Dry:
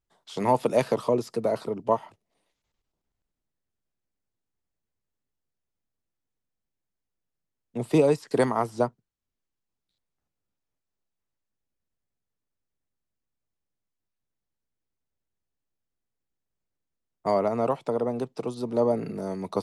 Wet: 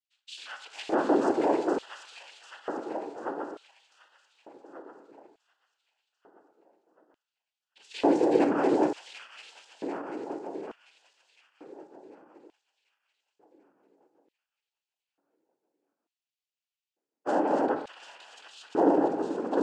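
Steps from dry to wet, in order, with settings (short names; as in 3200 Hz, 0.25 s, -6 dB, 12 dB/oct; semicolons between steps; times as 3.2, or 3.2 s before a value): regenerating reverse delay 0.371 s, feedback 71%, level -3.5 dB; noise vocoder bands 8; on a send at -7 dB: reverb RT60 1.0 s, pre-delay 17 ms; on the sum: LFO high-pass square 0.56 Hz 310–3000 Hz; gain -5.5 dB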